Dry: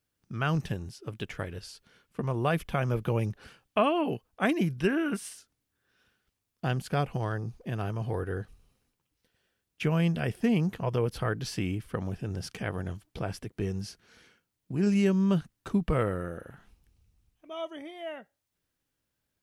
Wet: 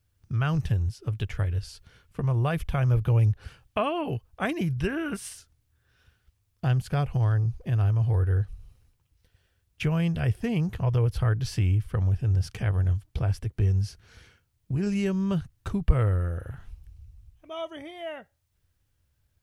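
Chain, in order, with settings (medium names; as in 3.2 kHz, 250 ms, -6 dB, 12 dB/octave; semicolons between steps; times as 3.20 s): resonant low shelf 140 Hz +13.5 dB, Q 1.5; in parallel at +2 dB: compression, threshold -33 dBFS, peak gain reduction 21.5 dB; on the sum: trim -4 dB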